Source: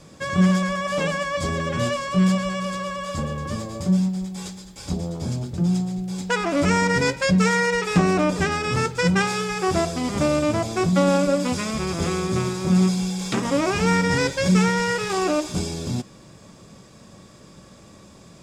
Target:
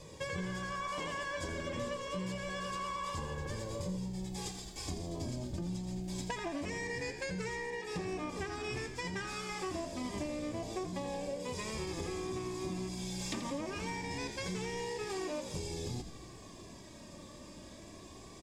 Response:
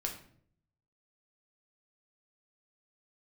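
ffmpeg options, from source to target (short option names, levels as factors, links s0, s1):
-filter_complex "[0:a]flanger=delay=2:depth=1.4:regen=16:speed=0.26:shape=triangular,acompressor=threshold=0.0158:ratio=10,asuperstop=centerf=1400:order=4:qfactor=4.6,asplit=8[s0][s1][s2][s3][s4][s5][s6][s7];[s1]adelay=84,afreqshift=-61,volume=0.335[s8];[s2]adelay=168,afreqshift=-122,volume=0.191[s9];[s3]adelay=252,afreqshift=-183,volume=0.108[s10];[s4]adelay=336,afreqshift=-244,volume=0.0624[s11];[s5]adelay=420,afreqshift=-305,volume=0.0355[s12];[s6]adelay=504,afreqshift=-366,volume=0.0202[s13];[s7]adelay=588,afreqshift=-427,volume=0.0115[s14];[s0][s8][s9][s10][s11][s12][s13][s14]amix=inputs=8:normalize=0"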